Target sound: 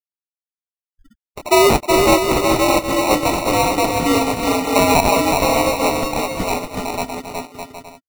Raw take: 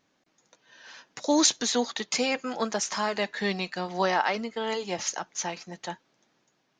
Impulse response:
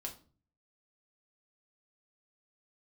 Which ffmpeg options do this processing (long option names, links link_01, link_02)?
-filter_complex "[0:a]anlmdn=0.1,afftfilt=real='re*gte(hypot(re,im),0.0112)':imag='im*gte(hypot(re,im),0.0112)':win_size=1024:overlap=0.75,highshelf=frequency=6000:gain=-7.5,afreqshift=79,asplit=2[link_01][link_02];[link_02]asoftclip=type=tanh:threshold=-21.5dB,volume=-8dB[link_03];[link_01][link_03]amix=inputs=2:normalize=0,atempo=0.84,acrusher=samples=27:mix=1:aa=0.000001,asplit=2[link_04][link_05];[link_05]aecho=0:1:370|610.5|766.8|868.4|934.5:0.631|0.398|0.251|0.158|0.1[link_06];[link_04][link_06]amix=inputs=2:normalize=0,volume=8.5dB"